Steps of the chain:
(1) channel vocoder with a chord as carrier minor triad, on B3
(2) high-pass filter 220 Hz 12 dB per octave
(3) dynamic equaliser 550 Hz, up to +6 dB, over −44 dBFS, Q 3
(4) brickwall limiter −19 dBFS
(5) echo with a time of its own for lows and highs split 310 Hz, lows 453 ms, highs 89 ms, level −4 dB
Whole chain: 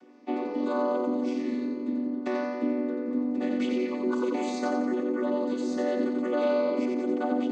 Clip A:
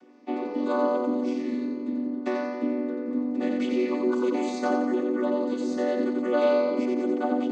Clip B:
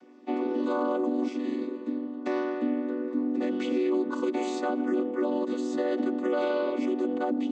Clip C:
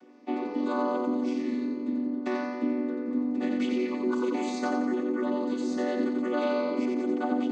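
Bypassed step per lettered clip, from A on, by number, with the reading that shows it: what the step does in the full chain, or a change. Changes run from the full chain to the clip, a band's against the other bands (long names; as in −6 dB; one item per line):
4, change in momentary loudness spread +2 LU
5, echo-to-direct ratio −2.5 dB to none audible
3, change in momentary loudness spread −1 LU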